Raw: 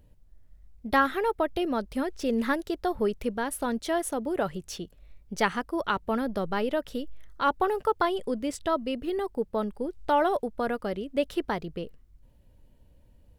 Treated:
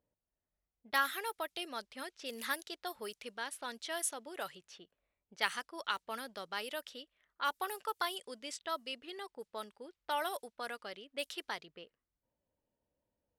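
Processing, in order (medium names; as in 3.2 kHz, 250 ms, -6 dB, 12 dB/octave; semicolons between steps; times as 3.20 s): wow and flutter 16 cents; level-controlled noise filter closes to 750 Hz, open at -22 dBFS; differentiator; trim +6.5 dB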